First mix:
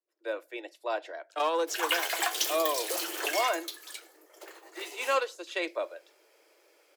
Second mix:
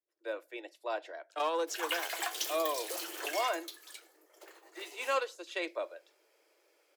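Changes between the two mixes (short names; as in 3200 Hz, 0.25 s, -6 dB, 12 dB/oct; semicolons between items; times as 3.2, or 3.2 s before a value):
speech -4.0 dB; background -6.5 dB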